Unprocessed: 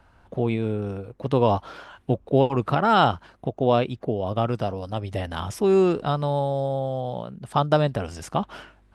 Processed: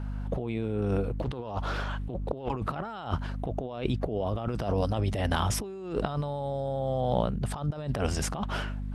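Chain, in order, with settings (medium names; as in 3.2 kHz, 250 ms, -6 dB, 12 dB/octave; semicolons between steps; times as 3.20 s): hum 50 Hz, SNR 16 dB; compressor with a negative ratio -31 dBFS, ratio -1; 1.12–2.49 s: loudspeaker Doppler distortion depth 0.45 ms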